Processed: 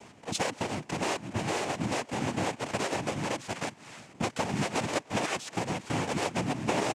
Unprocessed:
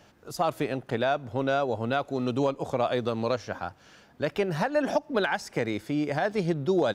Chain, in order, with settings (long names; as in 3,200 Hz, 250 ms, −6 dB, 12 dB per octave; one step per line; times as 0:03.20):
each half-wave held at its own peak
dynamic equaliser 2,400 Hz, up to +6 dB, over −46 dBFS
downward compressor 6 to 1, threshold −31 dBFS, peak gain reduction 14 dB
cochlear-implant simulation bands 4
far-end echo of a speakerphone 300 ms, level −28 dB
level +2.5 dB